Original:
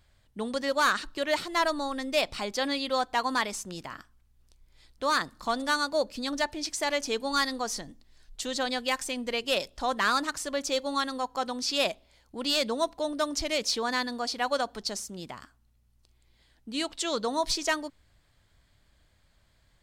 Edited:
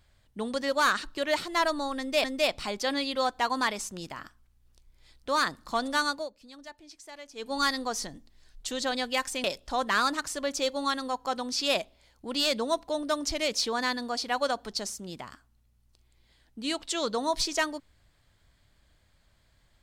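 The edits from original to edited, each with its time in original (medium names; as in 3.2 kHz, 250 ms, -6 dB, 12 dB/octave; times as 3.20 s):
1.98–2.24 s: loop, 2 plays
5.83–7.29 s: dip -17 dB, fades 0.20 s
9.18–9.54 s: delete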